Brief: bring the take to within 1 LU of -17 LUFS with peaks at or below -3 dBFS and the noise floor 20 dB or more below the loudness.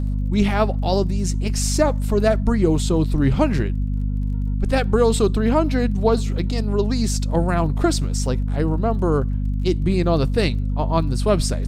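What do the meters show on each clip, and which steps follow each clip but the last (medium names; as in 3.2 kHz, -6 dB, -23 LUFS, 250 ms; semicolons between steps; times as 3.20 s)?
tick rate 21 per s; hum 50 Hz; highest harmonic 250 Hz; hum level -19 dBFS; loudness -20.5 LUFS; peak level -4.0 dBFS; loudness target -17.0 LUFS
-> de-click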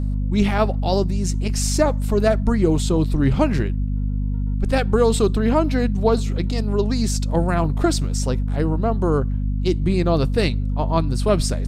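tick rate 0 per s; hum 50 Hz; highest harmonic 250 Hz; hum level -19 dBFS
-> de-hum 50 Hz, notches 5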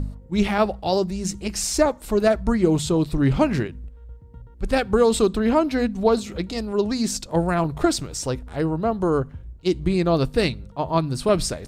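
hum not found; loudness -22.5 LUFS; peak level -5.5 dBFS; loudness target -17.0 LUFS
-> trim +5.5 dB; peak limiter -3 dBFS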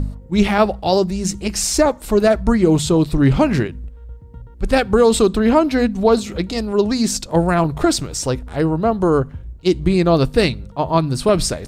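loudness -17.0 LUFS; peak level -3.0 dBFS; noise floor -38 dBFS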